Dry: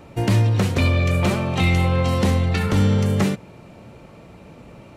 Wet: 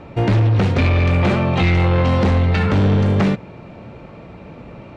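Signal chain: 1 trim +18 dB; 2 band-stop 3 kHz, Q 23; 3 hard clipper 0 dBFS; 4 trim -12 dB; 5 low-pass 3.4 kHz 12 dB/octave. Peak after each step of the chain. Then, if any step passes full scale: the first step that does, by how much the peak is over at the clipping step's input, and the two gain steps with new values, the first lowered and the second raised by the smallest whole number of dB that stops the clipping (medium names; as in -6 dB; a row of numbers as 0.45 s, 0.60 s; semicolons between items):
+9.0 dBFS, +9.0 dBFS, 0.0 dBFS, -12.0 dBFS, -11.5 dBFS; step 1, 9.0 dB; step 1 +9 dB, step 4 -3 dB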